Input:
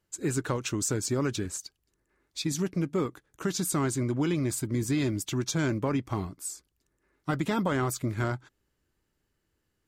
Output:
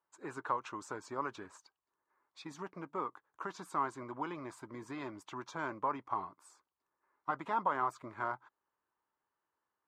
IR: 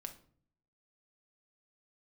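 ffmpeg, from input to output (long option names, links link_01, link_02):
-af "bandpass=frequency=1000:width_type=q:width=3.7:csg=0,volume=5dB"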